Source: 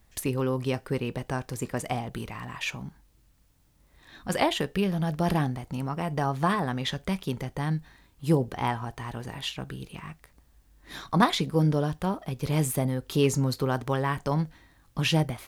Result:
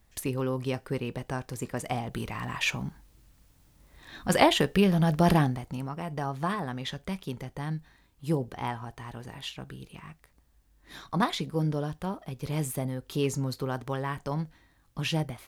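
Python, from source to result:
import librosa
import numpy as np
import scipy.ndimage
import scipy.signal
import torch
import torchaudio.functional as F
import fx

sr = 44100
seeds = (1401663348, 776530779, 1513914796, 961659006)

y = fx.gain(x, sr, db=fx.line((1.78, -2.5), (2.51, 4.0), (5.31, 4.0), (5.94, -5.0)))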